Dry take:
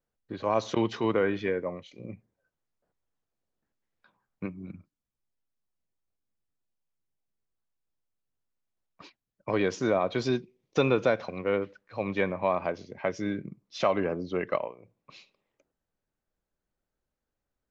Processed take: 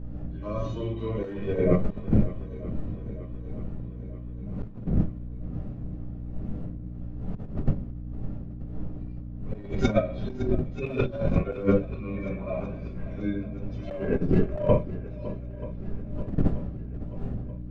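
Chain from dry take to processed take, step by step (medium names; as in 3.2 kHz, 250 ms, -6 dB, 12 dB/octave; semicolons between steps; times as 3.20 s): harmonic-percussive separation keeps harmonic; wind noise 190 Hz -37 dBFS; band-stop 900 Hz, Q 8.7; simulated room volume 60 m³, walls mixed, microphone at 1.2 m; gate with hold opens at -11 dBFS; hum 60 Hz, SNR 25 dB; in parallel at -9.5 dB: wavefolder -18 dBFS; on the sum: compressor with a negative ratio -27 dBFS, ratio -0.5; on a send: shuffle delay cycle 933 ms, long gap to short 1.5:1, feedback 54%, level -16 dB; on the sum: trim +4 dB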